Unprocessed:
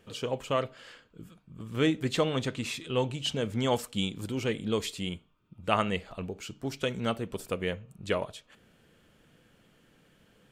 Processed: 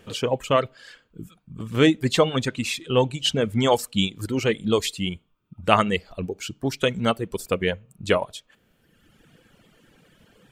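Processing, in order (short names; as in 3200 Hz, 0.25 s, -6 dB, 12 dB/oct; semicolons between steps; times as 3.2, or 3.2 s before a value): reverb removal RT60 1.4 s; gain +9 dB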